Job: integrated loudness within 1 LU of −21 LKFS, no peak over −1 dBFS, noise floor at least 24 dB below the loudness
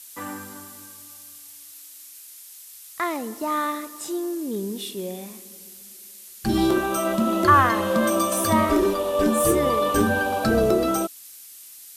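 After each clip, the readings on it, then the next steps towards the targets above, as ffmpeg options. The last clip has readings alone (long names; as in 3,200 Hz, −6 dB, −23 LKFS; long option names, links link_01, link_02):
background noise floor −44 dBFS; target noise floor −46 dBFS; integrated loudness −22.0 LKFS; sample peak −4.5 dBFS; target loudness −21.0 LKFS
→ -af "afftdn=noise_reduction=6:noise_floor=-44"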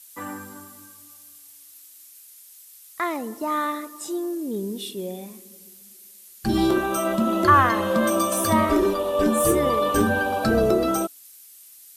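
background noise floor −48 dBFS; integrated loudness −22.0 LKFS; sample peak −4.5 dBFS; target loudness −21.0 LKFS
→ -af "volume=1dB"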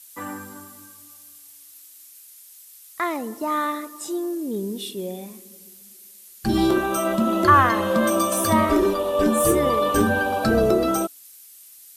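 integrated loudness −21.0 LKFS; sample peak −3.5 dBFS; background noise floor −47 dBFS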